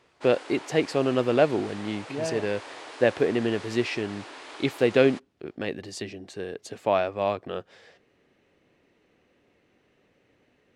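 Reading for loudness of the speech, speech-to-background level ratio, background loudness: -27.0 LUFS, 15.0 dB, -42.0 LUFS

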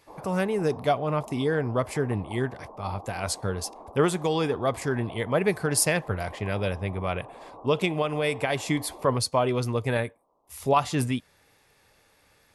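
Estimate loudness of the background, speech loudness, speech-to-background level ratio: -45.0 LUFS, -27.5 LUFS, 17.5 dB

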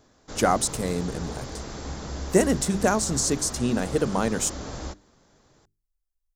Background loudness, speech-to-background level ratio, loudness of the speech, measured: -36.5 LUFS, 12.0 dB, -24.5 LUFS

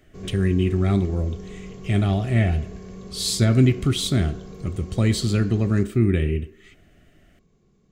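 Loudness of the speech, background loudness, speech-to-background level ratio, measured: -22.0 LUFS, -39.5 LUFS, 17.5 dB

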